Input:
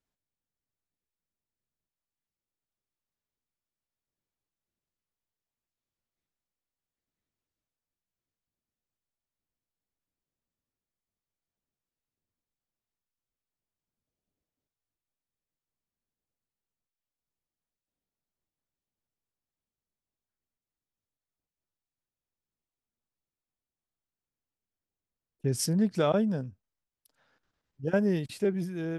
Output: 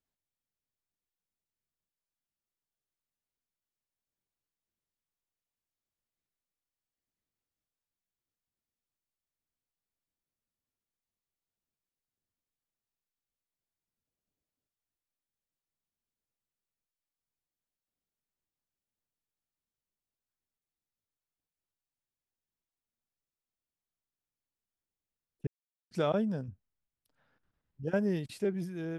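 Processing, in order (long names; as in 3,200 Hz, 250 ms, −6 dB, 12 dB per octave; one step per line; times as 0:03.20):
0:25.47–0:25.91: silence
0:26.48–0:27.83: bass and treble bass +7 dB, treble −10 dB
level −4 dB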